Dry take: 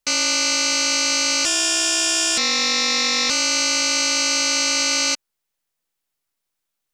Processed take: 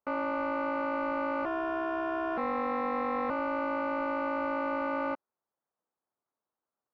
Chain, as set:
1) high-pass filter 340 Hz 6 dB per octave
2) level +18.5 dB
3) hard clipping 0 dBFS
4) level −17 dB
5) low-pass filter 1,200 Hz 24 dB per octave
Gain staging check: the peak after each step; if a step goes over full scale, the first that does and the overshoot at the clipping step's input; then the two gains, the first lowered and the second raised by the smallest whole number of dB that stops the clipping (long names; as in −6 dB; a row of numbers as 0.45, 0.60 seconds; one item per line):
−10.5, +8.0, 0.0, −17.0, −20.5 dBFS
step 2, 8.0 dB
step 2 +10.5 dB, step 4 −9 dB